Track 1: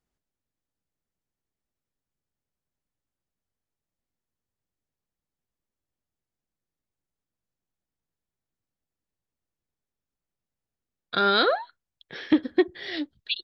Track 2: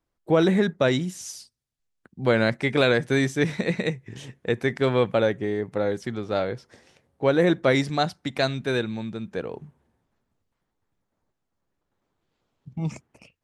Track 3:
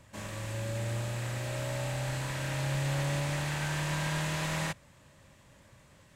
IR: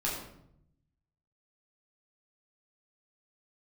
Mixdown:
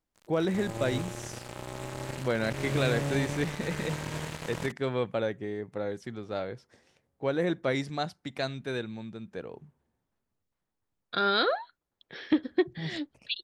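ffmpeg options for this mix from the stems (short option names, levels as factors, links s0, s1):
-filter_complex "[0:a]volume=0.596[s0];[1:a]volume=0.376[s1];[2:a]highpass=f=70:w=0.5412,highpass=f=70:w=1.3066,acrossover=split=460[s2][s3];[s3]acompressor=threshold=0.00447:ratio=3[s4];[s2][s4]amix=inputs=2:normalize=0,acrusher=bits=4:mix=0:aa=0.5,volume=1.12[s5];[s0][s1][s5]amix=inputs=3:normalize=0"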